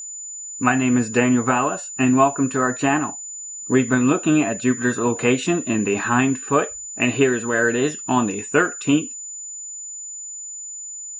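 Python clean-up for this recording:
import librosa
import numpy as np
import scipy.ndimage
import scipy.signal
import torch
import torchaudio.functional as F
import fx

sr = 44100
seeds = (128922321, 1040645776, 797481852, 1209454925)

y = fx.notch(x, sr, hz=7000.0, q=30.0)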